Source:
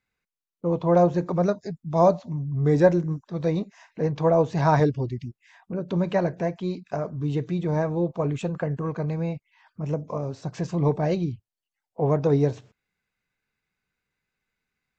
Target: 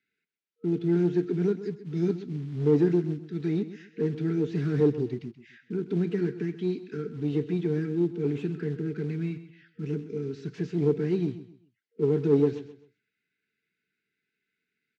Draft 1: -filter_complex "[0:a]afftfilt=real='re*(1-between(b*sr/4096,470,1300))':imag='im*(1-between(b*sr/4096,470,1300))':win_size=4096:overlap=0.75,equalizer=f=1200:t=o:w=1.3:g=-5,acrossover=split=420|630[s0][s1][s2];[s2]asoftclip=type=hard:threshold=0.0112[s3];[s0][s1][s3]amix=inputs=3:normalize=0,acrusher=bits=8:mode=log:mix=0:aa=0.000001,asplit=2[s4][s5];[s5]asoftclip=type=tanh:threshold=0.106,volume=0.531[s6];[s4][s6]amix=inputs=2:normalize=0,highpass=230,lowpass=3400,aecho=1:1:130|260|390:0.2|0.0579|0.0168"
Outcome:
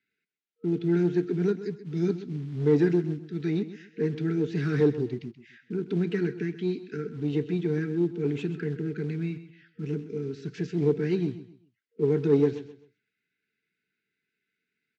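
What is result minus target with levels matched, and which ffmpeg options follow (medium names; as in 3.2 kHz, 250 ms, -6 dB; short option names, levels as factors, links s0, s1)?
hard clipper: distortion -6 dB
-filter_complex "[0:a]afftfilt=real='re*(1-between(b*sr/4096,470,1300))':imag='im*(1-between(b*sr/4096,470,1300))':win_size=4096:overlap=0.75,equalizer=f=1200:t=o:w=1.3:g=-5,acrossover=split=420|630[s0][s1][s2];[s2]asoftclip=type=hard:threshold=0.00376[s3];[s0][s1][s3]amix=inputs=3:normalize=0,acrusher=bits=8:mode=log:mix=0:aa=0.000001,asplit=2[s4][s5];[s5]asoftclip=type=tanh:threshold=0.106,volume=0.531[s6];[s4][s6]amix=inputs=2:normalize=0,highpass=230,lowpass=3400,aecho=1:1:130|260|390:0.2|0.0579|0.0168"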